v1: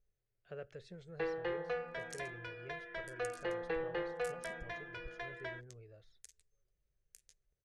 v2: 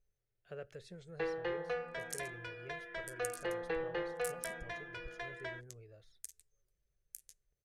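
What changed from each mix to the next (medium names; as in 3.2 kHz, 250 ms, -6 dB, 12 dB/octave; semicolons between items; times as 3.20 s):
master: remove distance through air 74 m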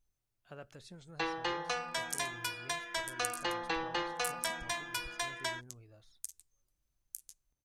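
first sound: remove tape spacing loss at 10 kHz 33 dB; master: add FFT filter 190 Hz 0 dB, 270 Hz +11 dB, 440 Hz -9 dB, 950 Hz +10 dB, 1.8 kHz -3 dB, 2.9 kHz +2 dB, 6 kHz +5 dB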